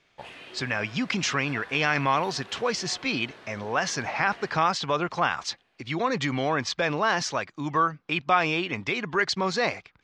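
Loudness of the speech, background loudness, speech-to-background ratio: -26.5 LUFS, -46.0 LUFS, 19.5 dB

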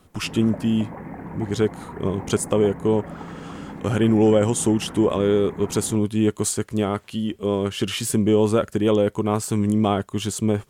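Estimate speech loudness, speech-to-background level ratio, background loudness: -22.0 LUFS, 15.0 dB, -37.0 LUFS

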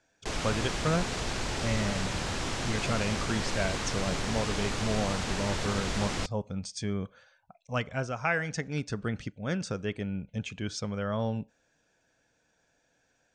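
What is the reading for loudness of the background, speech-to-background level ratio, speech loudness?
-33.0 LUFS, -0.5 dB, -33.5 LUFS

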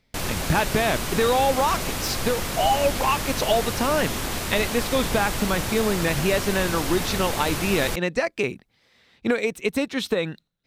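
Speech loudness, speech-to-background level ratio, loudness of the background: -24.5 LUFS, 3.0 dB, -27.5 LUFS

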